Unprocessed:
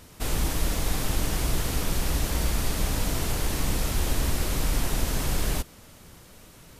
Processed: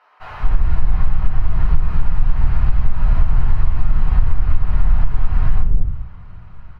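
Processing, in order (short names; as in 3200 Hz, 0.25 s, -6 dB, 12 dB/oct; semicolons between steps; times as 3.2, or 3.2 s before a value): EQ curve 130 Hz 0 dB, 290 Hz -17 dB, 640 Hz -9 dB, 920 Hz -1 dB, 6100 Hz -16 dB; bands offset in time highs, lows 0.2 s, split 530 Hz; shoebox room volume 49 m³, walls mixed, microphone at 1 m; compressor, threshold -12 dBFS, peak gain reduction 9.5 dB; air absorption 320 m; notch 3500 Hz, Q 8.8; gain +5.5 dB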